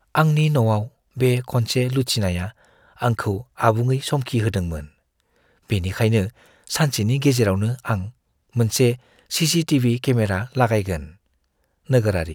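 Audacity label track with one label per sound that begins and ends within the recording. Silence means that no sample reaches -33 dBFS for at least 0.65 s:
5.700000	11.070000	sound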